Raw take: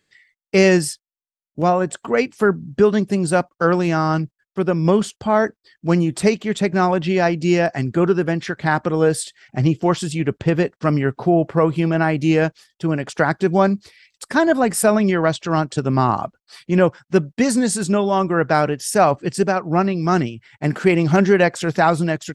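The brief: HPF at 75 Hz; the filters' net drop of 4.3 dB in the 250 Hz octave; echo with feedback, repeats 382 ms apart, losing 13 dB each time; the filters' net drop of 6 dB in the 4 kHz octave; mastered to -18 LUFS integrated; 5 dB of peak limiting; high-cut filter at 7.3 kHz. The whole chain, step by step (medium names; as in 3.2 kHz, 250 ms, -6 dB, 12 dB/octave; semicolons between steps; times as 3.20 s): high-pass 75 Hz; low-pass 7.3 kHz; peaking EQ 250 Hz -7 dB; peaking EQ 4 kHz -8 dB; peak limiter -8.5 dBFS; feedback delay 382 ms, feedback 22%, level -13 dB; trim +4 dB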